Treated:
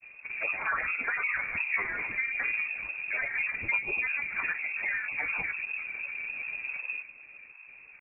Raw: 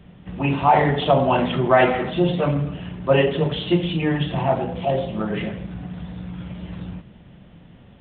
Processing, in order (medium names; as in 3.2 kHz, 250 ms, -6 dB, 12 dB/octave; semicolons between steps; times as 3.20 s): compression 6:1, threshold -23 dBFS, peak gain reduction 12 dB; granulator, spray 36 ms, pitch spread up and down by 12 st; frequency inversion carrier 2.6 kHz; trim -3.5 dB